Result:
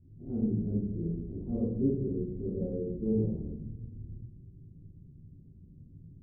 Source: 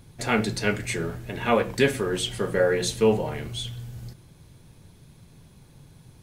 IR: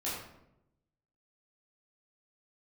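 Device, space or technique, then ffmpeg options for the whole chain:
next room: -filter_complex "[0:a]lowpass=f=320:w=0.5412,lowpass=f=320:w=1.3066[s0];[1:a]atrim=start_sample=2205[s1];[s0][s1]afir=irnorm=-1:irlink=0,volume=0.501"

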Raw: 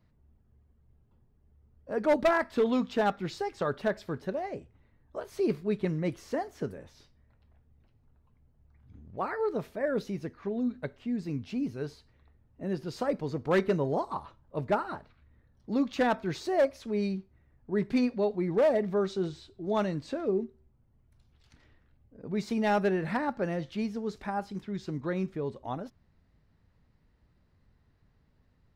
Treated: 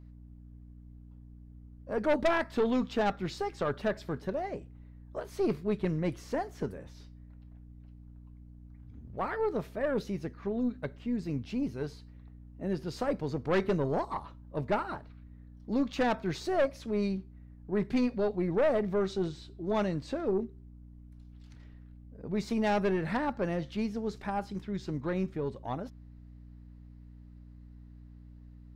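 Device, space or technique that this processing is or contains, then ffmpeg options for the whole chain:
valve amplifier with mains hum: -af "aeval=exprs='(tanh(12.6*val(0)+0.35)-tanh(0.35))/12.6':c=same,aeval=exprs='val(0)+0.00316*(sin(2*PI*60*n/s)+sin(2*PI*2*60*n/s)/2+sin(2*PI*3*60*n/s)/3+sin(2*PI*4*60*n/s)/4+sin(2*PI*5*60*n/s)/5)':c=same,volume=1.12"

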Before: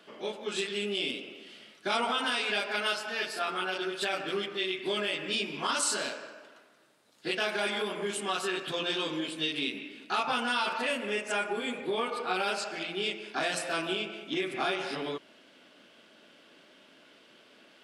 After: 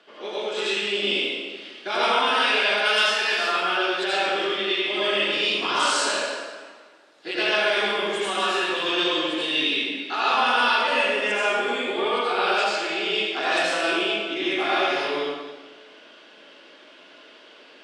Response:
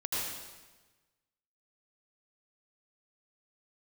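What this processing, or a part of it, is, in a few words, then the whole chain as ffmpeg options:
supermarket ceiling speaker: -filter_complex "[0:a]asettb=1/sr,asplit=3[s0][s1][s2];[s0]atrim=end=2.774[s3];[s1]atrim=start=2.77:end=3.29,asetpts=PTS-STARTPTS,afade=t=in:d=0.004:c=qsin,afade=t=out:st=0.516:d=0.004:c=qsin,highshelf=f=5100:g=10[s4];[s2]atrim=start=3.286[s5];[s3][s4]acrossfade=d=0.004:c1=hsin:c2=qsin[s6];[s6][s5]acrossfade=d=0.004:c1=qsin:c2=hsin,highpass=320,lowpass=5700[s7];[1:a]atrim=start_sample=2205[s8];[s7][s8]afir=irnorm=-1:irlink=0,volume=1.58"

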